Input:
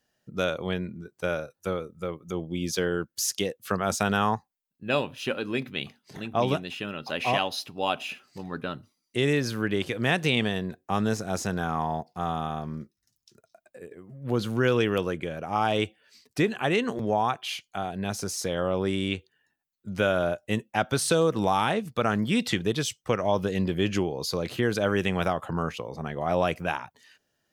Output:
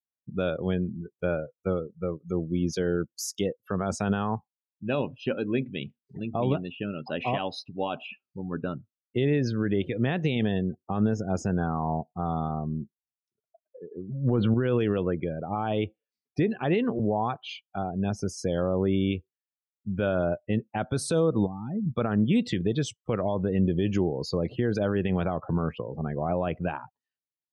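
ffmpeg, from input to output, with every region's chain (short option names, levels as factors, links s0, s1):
-filter_complex "[0:a]asettb=1/sr,asplit=3[s0][s1][s2];[s0]atrim=end=13.944[s3];[s1]atrim=start=13.94:end=14.54,asetpts=PTS-STARTPTS,afade=t=in:d=0.004:c=qsin,afade=t=out:st=0.596:d=0.004:c=qsin,acontrast=65,highshelf=f=3900:t=q:w=1.5:g=-14[s4];[s2]atrim=start=14.536[s5];[s3][s4]acrossfade=d=0.004:c1=hsin:c2=qsin[s6];[s6][s5]acrossfade=d=0.004:c1=qsin:c2=hsin,asettb=1/sr,asplit=3[s7][s8][s9];[s7]atrim=end=21.464[s10];[s8]atrim=start=21.46:end=21.95,asetpts=PTS-STARTPTS,afade=t=in:d=0.004:c=qsin,afade=t=out:st=0.486:d=0.004:c=qsin,bandreject=f=1600:w=28,acompressor=threshold=0.0158:ratio=8:attack=3.2:release=140:knee=1:detection=peak,lowshelf=f=330:t=q:w=1.5:g=9[s11];[s9]atrim=start=21.946[s12];[s10][s11]acrossfade=d=0.004:c1=hsin:c2=qsin[s13];[s13][s12]acrossfade=d=0.004:c1=qsin:c2=hsin,afftdn=nr=35:nf=-36,alimiter=limit=0.133:level=0:latency=1:release=46,tiltshelf=f=690:g=5"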